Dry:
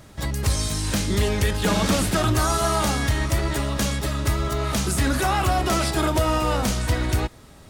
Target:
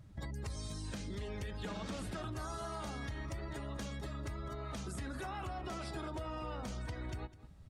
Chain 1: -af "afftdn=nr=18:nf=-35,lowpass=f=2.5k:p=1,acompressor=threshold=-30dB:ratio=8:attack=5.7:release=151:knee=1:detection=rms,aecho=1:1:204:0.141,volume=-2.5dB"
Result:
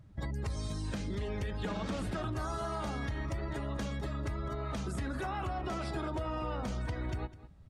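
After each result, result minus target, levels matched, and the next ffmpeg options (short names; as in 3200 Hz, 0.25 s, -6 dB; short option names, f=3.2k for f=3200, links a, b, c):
compressor: peak gain reduction -6 dB; 8000 Hz band -5.5 dB
-af "afftdn=nr=18:nf=-35,lowpass=f=2.5k:p=1,acompressor=threshold=-36.5dB:ratio=8:attack=5.7:release=151:knee=1:detection=rms,aecho=1:1:204:0.141,volume=-2.5dB"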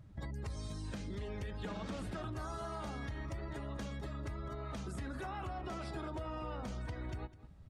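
8000 Hz band -5.5 dB
-af "afftdn=nr=18:nf=-35,lowpass=f=6.4k:p=1,acompressor=threshold=-36.5dB:ratio=8:attack=5.7:release=151:knee=1:detection=rms,aecho=1:1:204:0.141,volume=-2.5dB"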